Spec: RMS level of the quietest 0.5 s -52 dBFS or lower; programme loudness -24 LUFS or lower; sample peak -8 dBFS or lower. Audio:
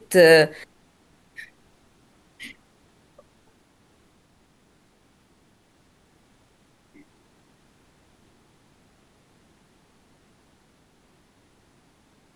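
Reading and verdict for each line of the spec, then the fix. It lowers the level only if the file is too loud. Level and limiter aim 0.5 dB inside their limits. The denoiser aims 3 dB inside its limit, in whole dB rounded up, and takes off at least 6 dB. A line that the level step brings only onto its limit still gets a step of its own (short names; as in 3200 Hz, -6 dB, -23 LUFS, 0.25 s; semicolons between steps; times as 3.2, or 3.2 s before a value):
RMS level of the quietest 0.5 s -61 dBFS: OK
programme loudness -15.5 LUFS: fail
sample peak -3.5 dBFS: fail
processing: gain -9 dB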